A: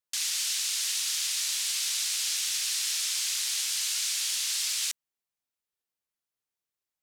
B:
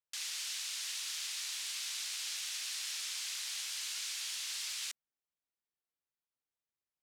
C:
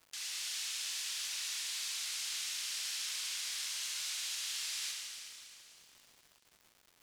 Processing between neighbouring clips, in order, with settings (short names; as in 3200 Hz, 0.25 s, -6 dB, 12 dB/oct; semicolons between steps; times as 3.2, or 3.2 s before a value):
high shelf 4200 Hz -8.5 dB; gain -5 dB
Schroeder reverb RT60 2.7 s, combs from 31 ms, DRR -0.5 dB; crackle 340/s -47 dBFS; gain -2.5 dB